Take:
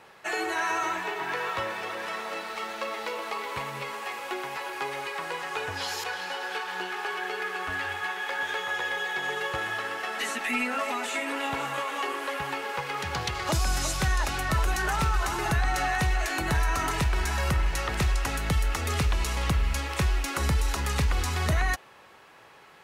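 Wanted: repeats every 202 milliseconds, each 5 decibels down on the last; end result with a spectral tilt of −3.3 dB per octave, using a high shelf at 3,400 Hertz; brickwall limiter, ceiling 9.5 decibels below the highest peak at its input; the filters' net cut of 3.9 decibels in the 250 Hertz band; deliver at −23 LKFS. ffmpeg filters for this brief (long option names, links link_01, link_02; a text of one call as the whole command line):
ffmpeg -i in.wav -af "equalizer=frequency=250:width_type=o:gain=-6,highshelf=frequency=3400:gain=8.5,alimiter=limit=-20.5dB:level=0:latency=1,aecho=1:1:202|404|606|808|1010|1212|1414:0.562|0.315|0.176|0.0988|0.0553|0.031|0.0173,volume=5dB" out.wav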